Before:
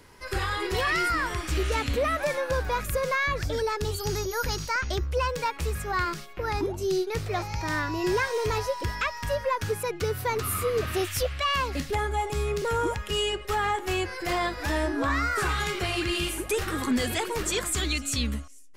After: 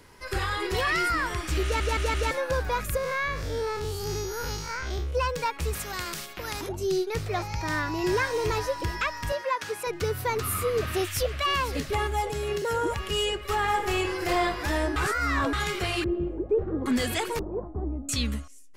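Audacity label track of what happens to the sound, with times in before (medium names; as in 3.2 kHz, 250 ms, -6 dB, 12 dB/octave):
1.630000	1.630000	stutter in place 0.17 s, 4 plays
2.970000	5.150000	spectral blur width 118 ms
5.730000	6.690000	spectrum-flattening compressor 2:1
7.400000	8.060000	echo throw 450 ms, feedback 65%, level -11 dB
9.320000	9.870000	frequency weighting A
10.720000	11.560000	echo throw 510 ms, feedback 85%, level -13 dB
12.310000	12.900000	comb of notches 1.2 kHz
13.550000	14.440000	reverb throw, RT60 1.3 s, DRR 4.5 dB
14.960000	15.530000	reverse
16.040000	16.860000	resonant low-pass 480 Hz, resonance Q 1.6
17.390000	18.090000	Chebyshev low-pass 890 Hz, order 4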